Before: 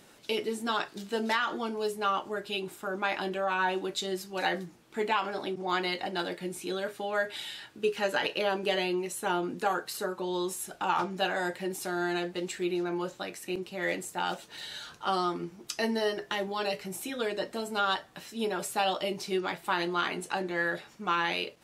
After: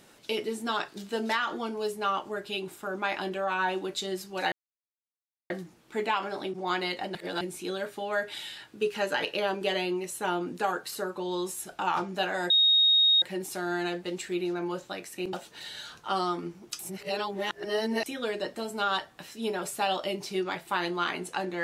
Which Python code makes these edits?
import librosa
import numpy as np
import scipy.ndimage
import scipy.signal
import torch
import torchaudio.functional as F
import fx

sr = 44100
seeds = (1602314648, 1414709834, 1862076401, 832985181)

y = fx.edit(x, sr, fx.insert_silence(at_s=4.52, length_s=0.98),
    fx.reverse_span(start_s=6.17, length_s=0.26),
    fx.insert_tone(at_s=11.52, length_s=0.72, hz=3740.0, db=-18.0),
    fx.cut(start_s=13.63, length_s=0.67),
    fx.reverse_span(start_s=15.76, length_s=1.27), tone=tone)